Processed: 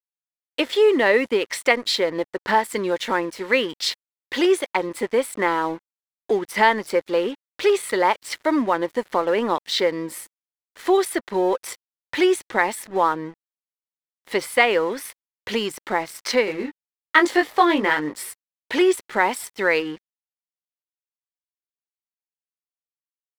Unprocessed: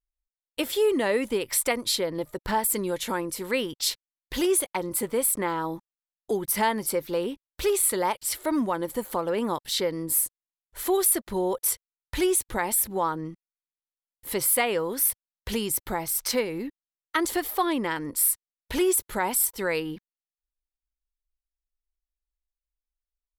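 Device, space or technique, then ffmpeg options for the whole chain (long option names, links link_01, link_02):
pocket radio on a weak battery: -filter_complex "[0:a]asettb=1/sr,asplit=3[link_01][link_02][link_03];[link_01]atrim=end=16.454[link_04];[link_02]atrim=start=16.45:end=18.23,asetpts=PTS-STARTPTS,afade=type=in:duration=0.004:curve=qsin,afade=type=out:start_time=1.776:duration=0.004:curve=qsin,asplit=2[link_05][link_06];[link_06]adelay=20,volume=-4.5dB[link_07];[link_05][link_07]amix=inputs=2:normalize=0,atrim=end_sample=78498[link_08];[link_03]atrim=start=18.226[link_09];[link_04][link_08]acrossfade=duration=0.004:curve1=hsin:curve2=qsin[link_10];[link_10][link_09]acrossfade=duration=0.004:curve1=qsin:curve2=hsin,highpass=270,lowpass=4400,aeval=exprs='sgn(val(0))*max(abs(val(0))-0.00398,0)':channel_layout=same,equalizer=frequency=1900:width_type=o:width=0.42:gain=5,volume=7.5dB"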